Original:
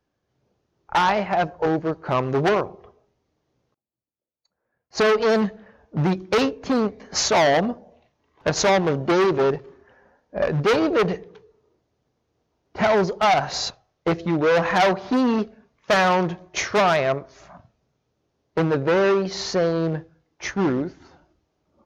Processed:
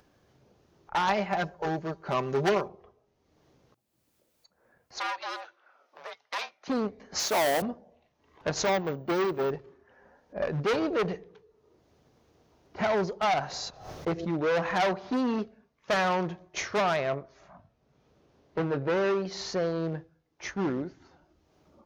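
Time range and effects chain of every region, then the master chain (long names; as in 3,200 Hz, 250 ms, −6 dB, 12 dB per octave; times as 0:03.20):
0:01.07–0:02.68: high-shelf EQ 4,800 Hz +10 dB + comb filter 5.1 ms, depth 51%
0:04.98–0:06.68: frequency shifter −310 Hz + high-pass filter 570 Hz 24 dB per octave
0:07.19–0:07.62: high-pass filter 230 Hz + noise that follows the level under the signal 13 dB
0:08.65–0:09.51: bad sample-rate conversion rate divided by 2×, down filtered, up hold + expander for the loud parts, over −29 dBFS
0:13.47–0:14.34: parametric band 2,700 Hz −3.5 dB 1.9 octaves + background raised ahead of every attack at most 78 dB per second
0:17.10–0:18.90: high-shelf EQ 6,000 Hz −10.5 dB + double-tracking delay 21 ms −11 dB
whole clip: upward compression, threshold −40 dBFS; mains-hum notches 60/120 Hz; level −8 dB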